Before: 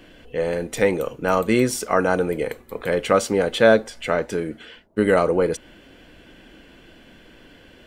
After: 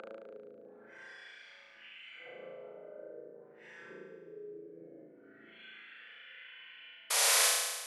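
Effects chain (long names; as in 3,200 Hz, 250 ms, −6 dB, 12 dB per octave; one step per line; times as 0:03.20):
extreme stretch with random phases 6.4×, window 0.05 s, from 0:03.72
parametric band 5,100 Hz −6.5 dB 1.5 octaves
envelope filter 430–2,900 Hz, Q 2.6, down, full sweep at −23 dBFS
high-pass filter 70 Hz
on a send at −2 dB: convolution reverb, pre-delay 6 ms
on the sum: downward compressor 12 to 1, threshold −53 dBFS, peak gain reduction 40.5 dB
high-frequency loss of the air 84 metres
sound drawn into the spectrogram noise, 0:07.10–0:07.48, 430–12,000 Hz −31 dBFS
flutter between parallel walls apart 6.2 metres, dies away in 1.3 s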